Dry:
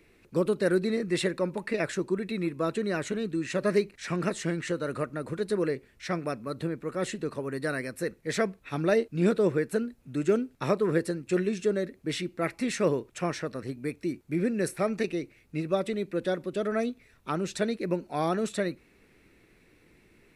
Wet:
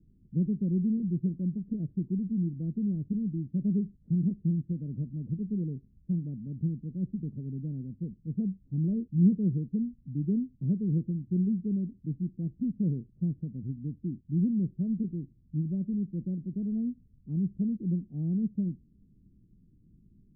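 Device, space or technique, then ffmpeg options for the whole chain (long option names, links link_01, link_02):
the neighbour's flat through the wall: -af "lowpass=frequency=210:width=0.5412,lowpass=frequency=210:width=1.3066,equalizer=frequency=200:width_type=o:width=0.77:gain=3,volume=4.5dB"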